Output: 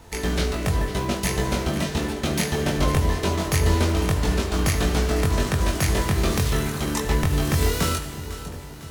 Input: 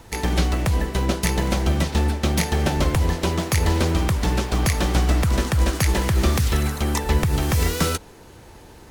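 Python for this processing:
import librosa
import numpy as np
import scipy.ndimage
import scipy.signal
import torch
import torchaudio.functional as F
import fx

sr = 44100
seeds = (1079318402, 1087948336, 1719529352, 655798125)

p1 = fx.doubler(x, sr, ms=21.0, db=-2.5)
p2 = p1 + fx.echo_split(p1, sr, split_hz=910.0, low_ms=653, high_ms=502, feedback_pct=52, wet_db=-13.5, dry=0)
p3 = fx.rev_fdn(p2, sr, rt60_s=1.1, lf_ratio=1.0, hf_ratio=0.95, size_ms=14.0, drr_db=7.5)
y = p3 * librosa.db_to_amplitude(-3.5)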